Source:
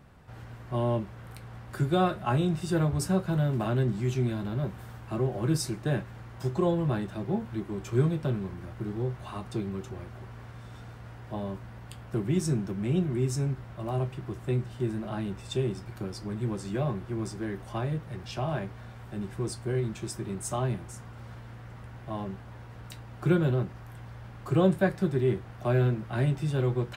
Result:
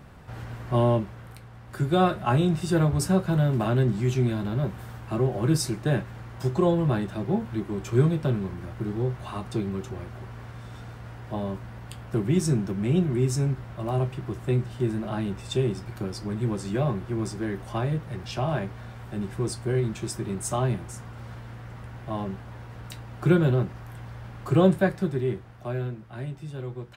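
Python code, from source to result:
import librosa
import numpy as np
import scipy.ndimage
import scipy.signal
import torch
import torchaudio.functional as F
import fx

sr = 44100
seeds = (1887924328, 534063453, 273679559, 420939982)

y = fx.gain(x, sr, db=fx.line((0.8, 7.0), (1.54, -2.5), (2.03, 4.0), (24.66, 4.0), (26.04, -8.0)))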